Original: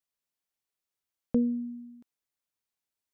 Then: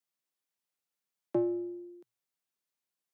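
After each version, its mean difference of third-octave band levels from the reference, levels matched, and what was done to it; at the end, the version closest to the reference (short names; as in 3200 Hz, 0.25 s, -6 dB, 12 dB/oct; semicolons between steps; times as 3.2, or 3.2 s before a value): 9.0 dB: one diode to ground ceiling -27 dBFS; frequency shift +110 Hz; gain -1 dB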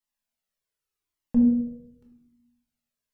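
4.0 dB: shoebox room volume 230 m³, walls mixed, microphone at 1.4 m; cascading flanger falling 0.84 Hz; gain +2 dB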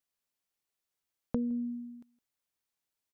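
1.0 dB: on a send: echo 0.163 s -22 dB; on the sum: compressor 4:1, threshold -31 dBFS, peak gain reduction 8.5 dB; gain +1 dB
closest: third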